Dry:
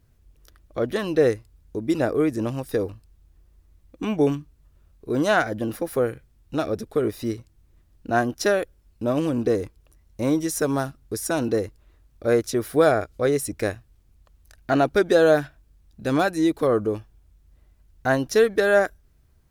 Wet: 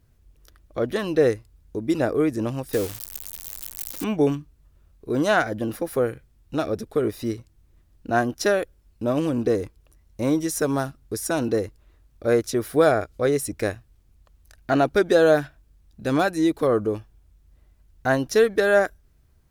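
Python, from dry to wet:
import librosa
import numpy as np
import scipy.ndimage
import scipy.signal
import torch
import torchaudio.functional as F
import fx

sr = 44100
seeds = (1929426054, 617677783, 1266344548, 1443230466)

y = fx.crossing_spikes(x, sr, level_db=-19.5, at=(2.73, 4.04))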